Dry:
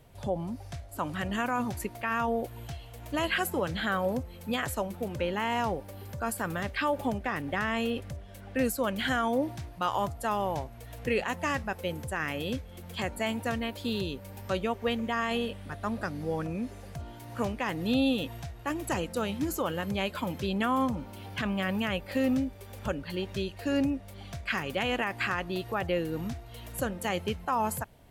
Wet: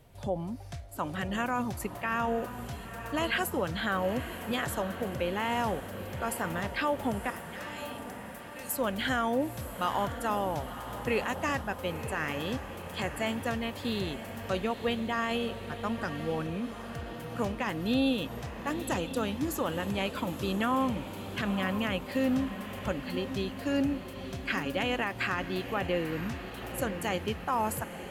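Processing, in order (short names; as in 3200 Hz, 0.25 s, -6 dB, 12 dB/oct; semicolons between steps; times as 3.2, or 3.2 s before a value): 7.3–8.76 differentiator; diffused feedback echo 0.958 s, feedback 62%, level -10.5 dB; gain -1 dB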